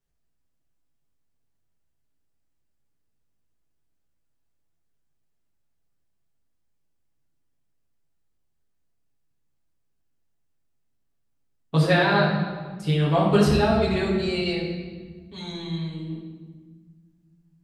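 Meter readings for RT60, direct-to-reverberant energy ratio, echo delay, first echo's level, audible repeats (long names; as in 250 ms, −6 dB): 1.5 s, −7.0 dB, no echo audible, no echo audible, no echo audible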